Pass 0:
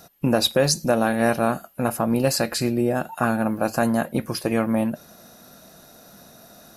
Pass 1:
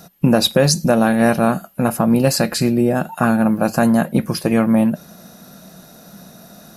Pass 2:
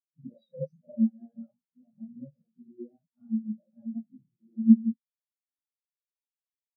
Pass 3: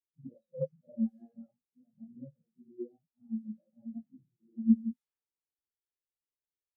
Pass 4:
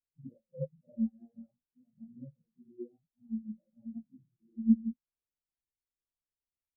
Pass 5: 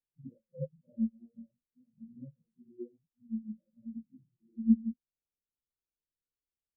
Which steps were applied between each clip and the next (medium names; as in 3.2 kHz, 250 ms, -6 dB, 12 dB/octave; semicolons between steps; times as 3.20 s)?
peaking EQ 180 Hz +10 dB 0.55 oct; trim +4 dB
phase randomisation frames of 200 ms; spectral contrast expander 4:1; trim -6.5 dB
level-controlled noise filter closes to 430 Hz, open at -24.5 dBFS; comb 2.4 ms, depth 58%
tilt EQ -3.5 dB/octave; trim -8 dB
steep low-pass 550 Hz 48 dB/octave